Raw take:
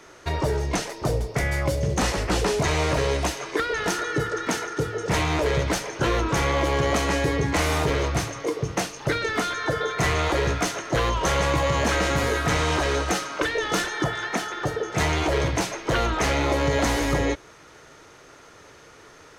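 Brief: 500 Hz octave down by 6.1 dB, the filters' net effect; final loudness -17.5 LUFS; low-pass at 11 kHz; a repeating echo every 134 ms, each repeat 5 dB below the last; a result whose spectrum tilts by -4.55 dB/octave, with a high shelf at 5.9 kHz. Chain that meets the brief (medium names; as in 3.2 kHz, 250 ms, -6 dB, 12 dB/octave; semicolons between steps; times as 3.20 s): low-pass 11 kHz; peaking EQ 500 Hz -7.5 dB; treble shelf 5.9 kHz -7 dB; feedback delay 134 ms, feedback 56%, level -5 dB; trim +7.5 dB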